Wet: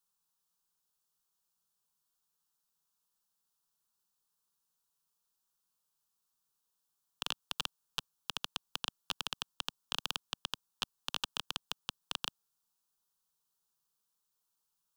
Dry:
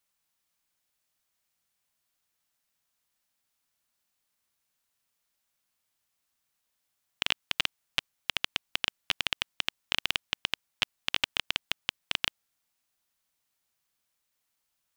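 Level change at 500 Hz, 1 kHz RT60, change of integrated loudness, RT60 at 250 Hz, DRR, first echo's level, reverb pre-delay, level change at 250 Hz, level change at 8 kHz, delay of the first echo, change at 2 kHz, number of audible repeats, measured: -7.0 dB, no reverb, -8.0 dB, no reverb, no reverb, no echo, no reverb, -5.5 dB, -3.0 dB, no echo, -12.5 dB, no echo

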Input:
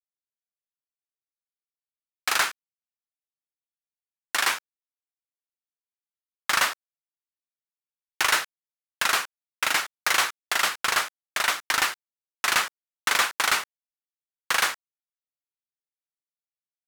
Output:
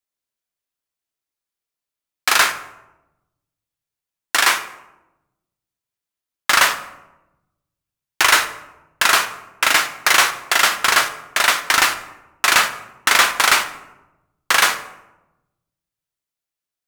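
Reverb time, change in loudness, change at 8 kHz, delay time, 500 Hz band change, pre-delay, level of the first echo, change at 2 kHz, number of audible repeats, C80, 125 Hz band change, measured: 1.0 s, +8.5 dB, +8.5 dB, no echo, +9.0 dB, 3 ms, no echo, +8.5 dB, no echo, 14.5 dB, no reading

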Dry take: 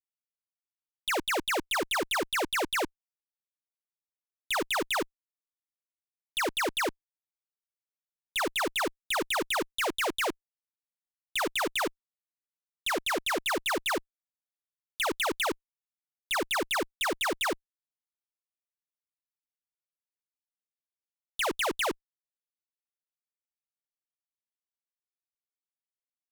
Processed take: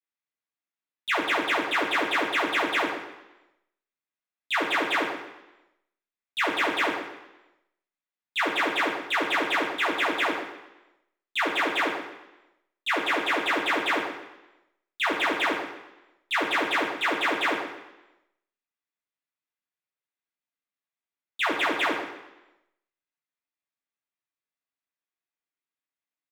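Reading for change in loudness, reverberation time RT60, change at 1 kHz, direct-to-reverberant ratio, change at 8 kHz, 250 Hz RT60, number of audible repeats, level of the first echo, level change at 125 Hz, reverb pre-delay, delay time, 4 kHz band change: +4.0 dB, 0.95 s, +5.0 dB, -4.5 dB, -7.0 dB, 0.95 s, 1, -10.0 dB, no reading, 4 ms, 127 ms, +2.0 dB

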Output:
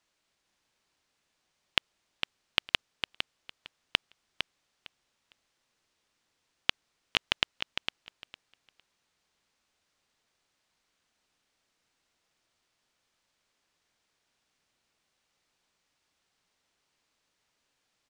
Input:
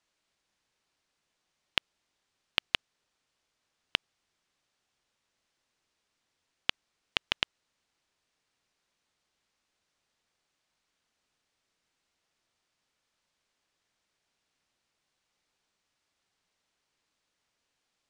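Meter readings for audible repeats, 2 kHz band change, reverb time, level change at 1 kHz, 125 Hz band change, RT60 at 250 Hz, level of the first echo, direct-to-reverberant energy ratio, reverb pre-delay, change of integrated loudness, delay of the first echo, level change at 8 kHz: 2, +2.5 dB, no reverb, +2.5 dB, +2.5 dB, no reverb, -7.5 dB, no reverb, no reverb, +0.5 dB, 456 ms, +2.5 dB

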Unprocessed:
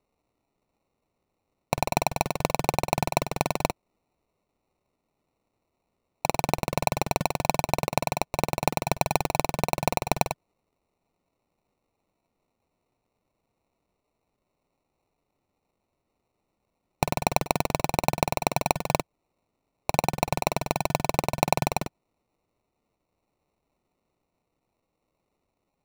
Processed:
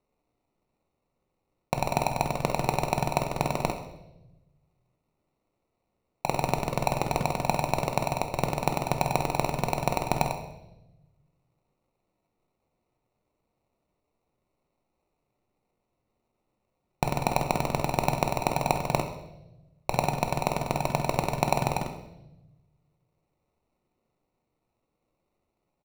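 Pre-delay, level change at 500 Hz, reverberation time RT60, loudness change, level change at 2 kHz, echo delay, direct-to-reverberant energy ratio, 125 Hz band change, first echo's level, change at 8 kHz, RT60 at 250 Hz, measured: 5 ms, -1.0 dB, 0.95 s, -1.5 dB, -2.5 dB, 66 ms, 5.0 dB, +1.0 dB, -13.5 dB, -4.0 dB, 1.3 s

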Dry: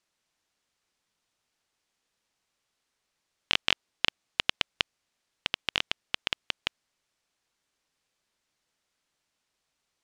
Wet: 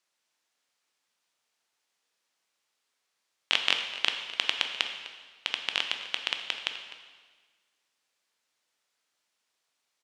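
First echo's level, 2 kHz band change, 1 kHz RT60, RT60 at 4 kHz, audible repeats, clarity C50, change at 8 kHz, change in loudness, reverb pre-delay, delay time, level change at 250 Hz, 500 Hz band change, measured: -16.0 dB, +1.0 dB, 1.4 s, 1.4 s, 1, 6.5 dB, +1.0 dB, +1.0 dB, 5 ms, 253 ms, -5.5 dB, -1.5 dB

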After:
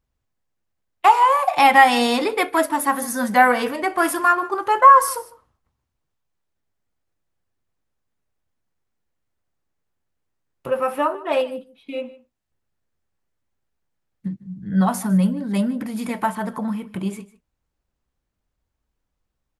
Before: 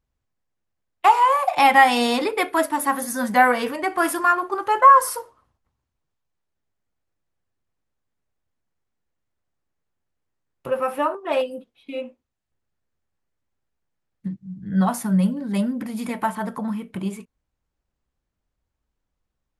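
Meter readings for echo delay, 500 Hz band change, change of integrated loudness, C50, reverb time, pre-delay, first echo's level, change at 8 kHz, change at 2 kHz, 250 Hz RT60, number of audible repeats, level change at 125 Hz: 152 ms, +1.5 dB, +1.5 dB, no reverb, no reverb, no reverb, -19.5 dB, +1.5 dB, +1.5 dB, no reverb, 1, +1.5 dB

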